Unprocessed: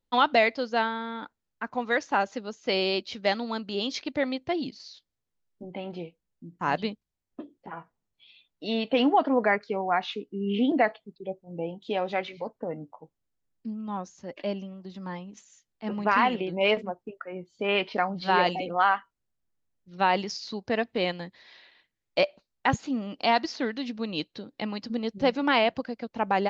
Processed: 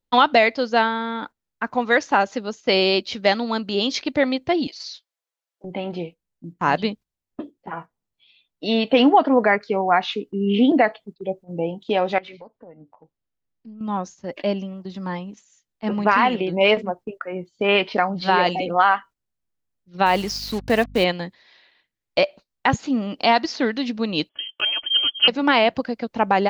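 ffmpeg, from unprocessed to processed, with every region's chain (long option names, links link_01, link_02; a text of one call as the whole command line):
ffmpeg -i in.wav -filter_complex "[0:a]asettb=1/sr,asplit=3[link_01][link_02][link_03];[link_01]atrim=end=4.674[link_04];[link_02]atrim=start=4.67:end=5.64,asetpts=PTS-STARTPTS,afade=type=in:duration=0.004:curve=qsin,afade=type=out:start_time=0.966:duration=0.004:curve=qsin,highpass=frequency=520:width=0.5412,highpass=frequency=520:width=1.3066,aecho=1:1:6:0.98,atrim=end_sample=42777[link_05];[link_03]atrim=start=5.636[link_06];[link_04][link_05]acrossfade=duration=0.004:curve1=hsin:curve2=qsin[link_07];[link_07][link_06]acrossfade=duration=0.004:curve1=qsin:curve2=hsin,asettb=1/sr,asplit=3[link_08][link_09][link_10];[link_08]atrim=end=12.184[link_11];[link_09]atrim=start=12.18:end=13.81,asetpts=PTS-STARTPTS,afade=type=in:duration=0.004:curve=qsin,afade=type=out:start_time=1.626:duration=0.004:curve=qsin,lowpass=5400,acompressor=threshold=-42dB:ratio=10:attack=3.2:release=140:knee=1:detection=peak,aeval=exprs='(tanh(20*val(0)+0.25)-tanh(0.25))/20':channel_layout=same[link_12];[link_10]atrim=start=13.806[link_13];[link_11][link_12]acrossfade=duration=0.004:curve1=hsin:curve2=qsin[link_14];[link_14][link_13]acrossfade=duration=0.004:curve1=qsin:curve2=hsin,asettb=1/sr,asplit=3[link_15][link_16][link_17];[link_15]atrim=end=20.064[link_18];[link_16]atrim=start=20.06:end=21.04,asetpts=PTS-STARTPTS,afade=type=in:duration=0.004:curve=qsin,afade=type=out:start_time=0.976:duration=0.004:curve=qsin,lowshelf=frequency=76:gain=6,acrusher=bits=6:mix=0:aa=0.5,aeval=exprs='val(0)+0.00398*(sin(2*PI*50*n/s)+sin(2*PI*2*50*n/s)/2+sin(2*PI*3*50*n/s)/3+sin(2*PI*4*50*n/s)/4+sin(2*PI*5*50*n/s)/5)':channel_layout=same[link_19];[link_17]atrim=start=21.036[link_20];[link_18][link_19]acrossfade=duration=0.004:curve1=hsin:curve2=qsin[link_21];[link_21][link_20]acrossfade=duration=0.004:curve1=qsin:curve2=hsin,asettb=1/sr,asplit=3[link_22][link_23][link_24];[link_22]atrim=end=24.294[link_25];[link_23]atrim=start=24.29:end=25.28,asetpts=PTS-STARTPTS,afade=type=in:duration=0.004:curve=qsin,afade=type=out:start_time=0.986:duration=0.004:curve=qsin,aecho=1:1:3.6:0.61,atrim=end_sample=43659,lowpass=frequency=2900:width_type=q:width=0.5098,lowpass=frequency=2900:width_type=q:width=0.6013,lowpass=frequency=2900:width_type=q:width=0.9,lowpass=frequency=2900:width_type=q:width=2.563,afreqshift=-3400[link_26];[link_24]atrim=start=25.276[link_27];[link_25][link_26]acrossfade=duration=0.004:curve1=hsin:curve2=qsin[link_28];[link_28][link_27]acrossfade=duration=0.004:curve1=qsin:curve2=hsin,agate=range=-9dB:threshold=-45dB:ratio=16:detection=peak,alimiter=limit=-13dB:level=0:latency=1:release=316,volume=8dB" out.wav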